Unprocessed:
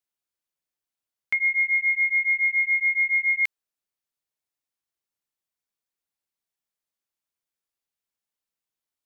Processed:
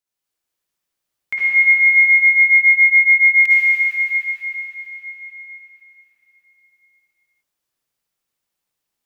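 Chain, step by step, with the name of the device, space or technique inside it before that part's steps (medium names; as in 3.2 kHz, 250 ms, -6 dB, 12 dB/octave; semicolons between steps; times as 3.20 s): cathedral (reverberation RT60 5.1 s, pre-delay 49 ms, DRR -9.5 dB)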